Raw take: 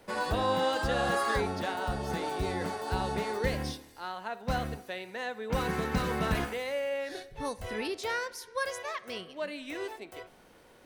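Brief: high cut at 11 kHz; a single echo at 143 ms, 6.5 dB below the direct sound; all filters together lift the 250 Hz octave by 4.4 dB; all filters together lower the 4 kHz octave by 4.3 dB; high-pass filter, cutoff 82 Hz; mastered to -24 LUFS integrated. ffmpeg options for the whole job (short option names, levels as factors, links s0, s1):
-af "highpass=82,lowpass=11000,equalizer=f=250:t=o:g=6,equalizer=f=4000:t=o:g=-5.5,aecho=1:1:143:0.473,volume=2.24"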